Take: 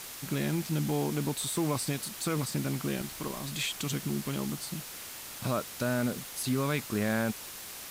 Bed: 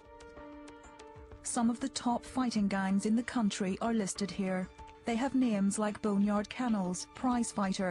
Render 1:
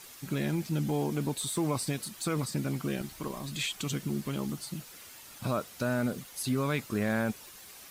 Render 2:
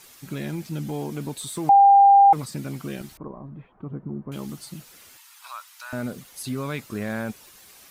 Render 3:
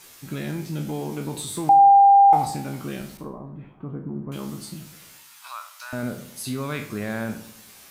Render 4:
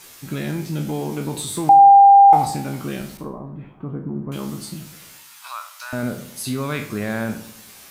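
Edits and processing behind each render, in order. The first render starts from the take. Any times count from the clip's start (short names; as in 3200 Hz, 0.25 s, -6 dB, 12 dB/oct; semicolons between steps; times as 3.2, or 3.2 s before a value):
denoiser 9 dB, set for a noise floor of -44 dBFS
1.69–2.33 bleep 797 Hz -9.5 dBFS; 3.17–4.32 LPF 1100 Hz 24 dB/oct; 5.17–5.93 Chebyshev high-pass 930 Hz, order 4
spectral trails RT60 0.39 s; darkening echo 98 ms, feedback 47%, low-pass 1800 Hz, level -12.5 dB
gain +4 dB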